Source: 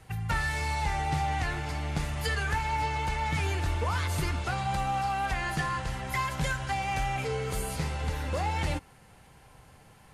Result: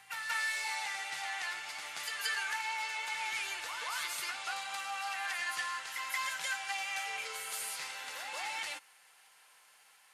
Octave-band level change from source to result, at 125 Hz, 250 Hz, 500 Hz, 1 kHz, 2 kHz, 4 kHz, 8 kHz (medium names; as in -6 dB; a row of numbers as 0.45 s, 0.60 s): under -40 dB, under -25 dB, -17.0 dB, -9.5 dB, -1.5 dB, +0.5 dB, +1.0 dB